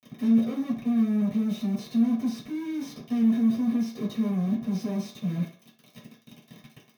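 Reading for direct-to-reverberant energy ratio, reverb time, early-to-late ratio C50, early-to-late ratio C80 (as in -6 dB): -6.5 dB, 0.50 s, 6.5 dB, 12.0 dB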